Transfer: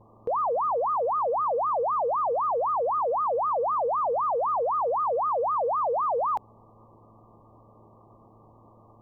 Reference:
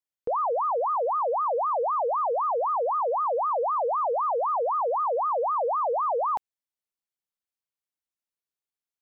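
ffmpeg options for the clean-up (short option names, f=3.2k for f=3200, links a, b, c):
-af "bandreject=f=110.8:t=h:w=4,bandreject=f=221.6:t=h:w=4,bandreject=f=332.4:t=h:w=4,bandreject=f=443.2:t=h:w=4,bandreject=f=554:t=h:w=4,afwtdn=0.0063"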